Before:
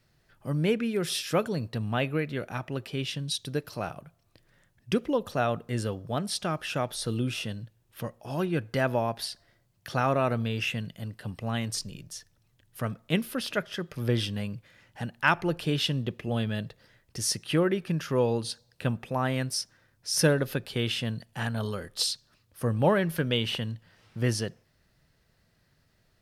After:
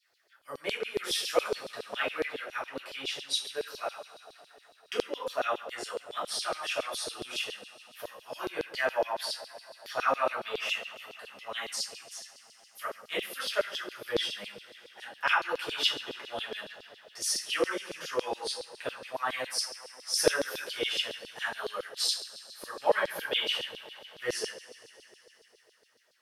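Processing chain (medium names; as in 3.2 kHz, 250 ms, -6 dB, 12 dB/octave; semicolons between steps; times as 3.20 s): two-slope reverb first 0.41 s, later 4 s, from -21 dB, DRR -5.5 dB; LFO high-pass saw down 7.2 Hz 410–4600 Hz; trim -8.5 dB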